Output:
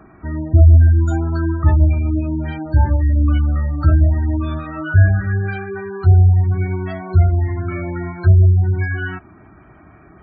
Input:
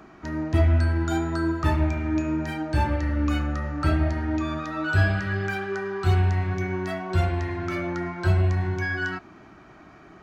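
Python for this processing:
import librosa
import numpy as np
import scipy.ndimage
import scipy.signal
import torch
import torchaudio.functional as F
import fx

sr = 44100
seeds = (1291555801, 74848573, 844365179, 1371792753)

y = fx.spec_gate(x, sr, threshold_db=-20, keep='strong')
y = fx.peak_eq(y, sr, hz=78.0, db=10.5, octaves=1.6)
y = y * librosa.db_to_amplitude(1.5)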